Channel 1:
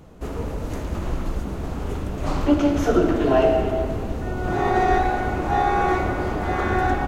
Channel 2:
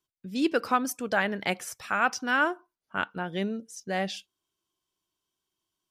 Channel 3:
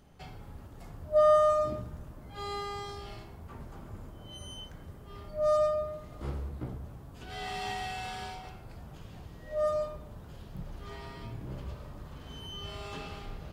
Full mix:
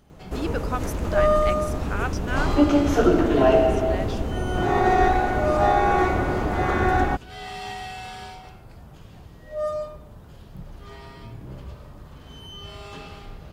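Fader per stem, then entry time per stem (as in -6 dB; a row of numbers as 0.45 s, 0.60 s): +0.5 dB, -5.0 dB, +2.0 dB; 0.10 s, 0.00 s, 0.00 s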